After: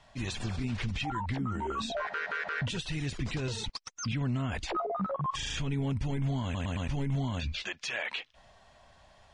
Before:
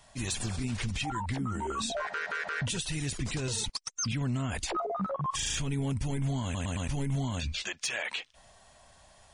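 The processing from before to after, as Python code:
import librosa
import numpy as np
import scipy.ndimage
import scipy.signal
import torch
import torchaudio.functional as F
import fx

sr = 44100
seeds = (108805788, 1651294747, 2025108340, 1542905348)

y = scipy.signal.sosfilt(scipy.signal.butter(2, 4200.0, 'lowpass', fs=sr, output='sos'), x)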